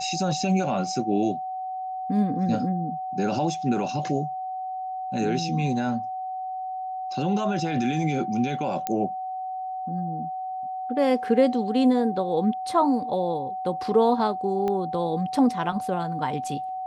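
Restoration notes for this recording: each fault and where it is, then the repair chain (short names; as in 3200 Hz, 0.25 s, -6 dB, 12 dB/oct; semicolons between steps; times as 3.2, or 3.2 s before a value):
tone 750 Hz -29 dBFS
8.87 pop -12 dBFS
14.68 pop -17 dBFS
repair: de-click; notch 750 Hz, Q 30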